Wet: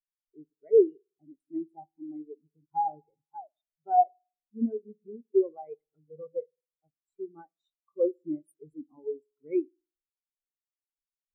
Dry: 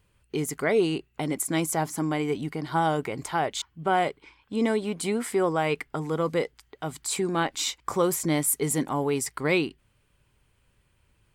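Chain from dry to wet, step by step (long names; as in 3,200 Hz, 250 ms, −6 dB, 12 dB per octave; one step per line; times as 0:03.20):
low-shelf EQ 130 Hz −4.5 dB
spring reverb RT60 1.6 s, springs 52 ms, chirp 50 ms, DRR 7.5 dB
background noise pink −42 dBFS
every bin expanded away from the loudest bin 4 to 1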